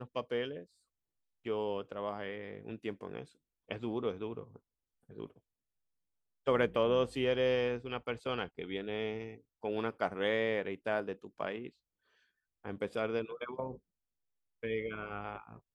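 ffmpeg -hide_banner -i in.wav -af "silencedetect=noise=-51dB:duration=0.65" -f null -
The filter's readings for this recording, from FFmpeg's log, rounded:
silence_start: 0.64
silence_end: 1.45 | silence_duration: 0.81
silence_start: 5.38
silence_end: 6.47 | silence_duration: 1.09
silence_start: 11.69
silence_end: 12.65 | silence_duration: 0.96
silence_start: 13.77
silence_end: 14.63 | silence_duration: 0.86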